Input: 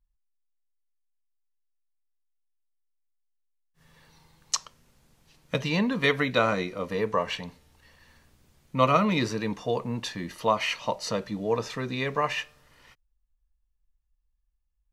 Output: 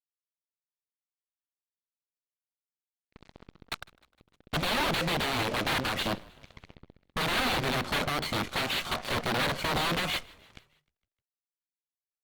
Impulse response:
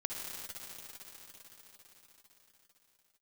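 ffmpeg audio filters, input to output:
-filter_complex "[0:a]lowshelf=f=450:g=9,acompressor=threshold=-24dB:ratio=6,aresample=11025,aeval=exprs='(mod(21.1*val(0)+1,2)-1)/21.1':c=same,aresample=44100,aresample=8000,aresample=44100,acrusher=bits=6:mix=0:aa=0.5,aeval=exprs='0.0794*(cos(1*acos(clip(val(0)/0.0794,-1,1)))-cos(1*PI/2))+0.00794*(cos(6*acos(clip(val(0)/0.0794,-1,1)))-cos(6*PI/2))+0.0126*(cos(8*acos(clip(val(0)/0.0794,-1,1)))-cos(8*PI/2))':c=same,asplit=5[a][b][c][d][e];[b]adelay=187,afreqshift=-31,volume=-24dB[f];[c]adelay=374,afreqshift=-62,volume=-29dB[g];[d]adelay=561,afreqshift=-93,volume=-34.1dB[h];[e]adelay=748,afreqshift=-124,volume=-39.1dB[i];[a][f][g][h][i]amix=inputs=5:normalize=0,asetrate=53802,aresample=44100,volume=3.5dB" -ar 48000 -c:a libopus -b:a 48k

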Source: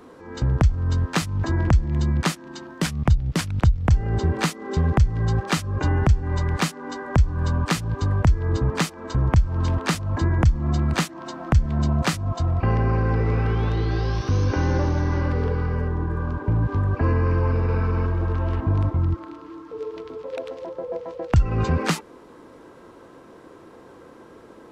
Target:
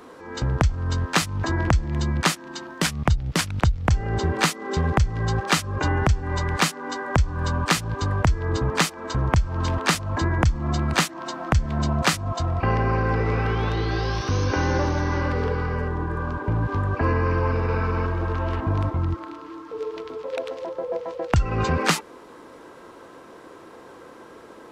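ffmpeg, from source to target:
-af "lowshelf=f=380:g=-8.5,volume=5dB"

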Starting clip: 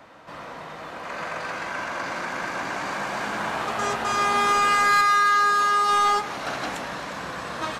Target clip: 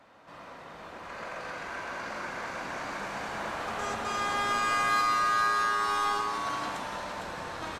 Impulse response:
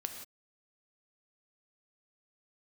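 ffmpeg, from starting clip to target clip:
-filter_complex "[0:a]asplit=7[a][b][c][d][e][f][g];[b]adelay=456,afreqshift=-110,volume=-6dB[h];[c]adelay=912,afreqshift=-220,volume=-11.7dB[i];[d]adelay=1368,afreqshift=-330,volume=-17.4dB[j];[e]adelay=1824,afreqshift=-440,volume=-23dB[k];[f]adelay=2280,afreqshift=-550,volume=-28.7dB[l];[g]adelay=2736,afreqshift=-660,volume=-34.4dB[m];[a][h][i][j][k][l][m]amix=inputs=7:normalize=0[n];[1:a]atrim=start_sample=2205,asetrate=41454,aresample=44100[o];[n][o]afir=irnorm=-1:irlink=0,volume=-8dB"

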